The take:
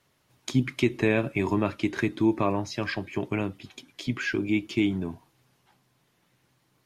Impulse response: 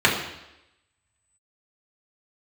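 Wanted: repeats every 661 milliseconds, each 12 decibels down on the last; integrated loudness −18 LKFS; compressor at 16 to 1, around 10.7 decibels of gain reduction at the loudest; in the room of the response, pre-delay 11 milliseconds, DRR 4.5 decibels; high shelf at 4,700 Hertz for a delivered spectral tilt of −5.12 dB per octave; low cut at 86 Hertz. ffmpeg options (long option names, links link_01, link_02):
-filter_complex "[0:a]highpass=86,highshelf=frequency=4700:gain=-8.5,acompressor=threshold=-28dB:ratio=16,aecho=1:1:661|1322|1983:0.251|0.0628|0.0157,asplit=2[link_01][link_02];[1:a]atrim=start_sample=2205,adelay=11[link_03];[link_02][link_03]afir=irnorm=-1:irlink=0,volume=-25dB[link_04];[link_01][link_04]amix=inputs=2:normalize=0,volume=15.5dB"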